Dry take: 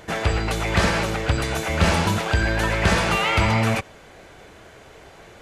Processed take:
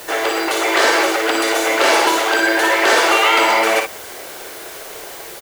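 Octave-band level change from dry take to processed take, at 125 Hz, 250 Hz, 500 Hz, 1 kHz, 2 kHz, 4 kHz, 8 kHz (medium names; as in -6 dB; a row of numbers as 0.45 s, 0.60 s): under -25 dB, +2.0 dB, +8.5 dB, +9.0 dB, +8.5 dB, +8.5 dB, +9.5 dB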